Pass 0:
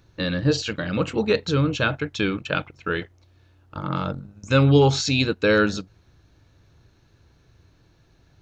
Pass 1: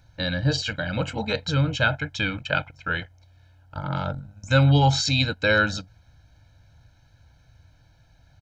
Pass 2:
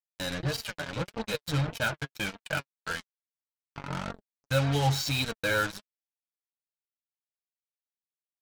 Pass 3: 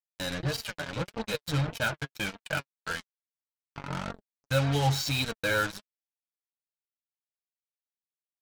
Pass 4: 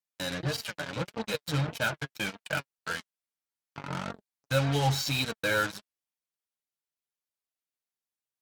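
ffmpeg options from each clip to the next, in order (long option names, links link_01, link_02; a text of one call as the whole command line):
ffmpeg -i in.wav -af "equalizer=frequency=200:width_type=o:width=0.5:gain=-6,aecho=1:1:1.3:0.93,volume=-2.5dB" out.wav
ffmpeg -i in.wav -af "acrusher=bits=3:mix=0:aa=0.5,flanger=delay=4.3:depth=3:regen=31:speed=1.7:shape=sinusoidal,volume=-3.5dB" out.wav
ffmpeg -i in.wav -af anull out.wav
ffmpeg -i in.wav -af "highpass=100" -ar 48000 -c:a libopus -b:a 64k out.opus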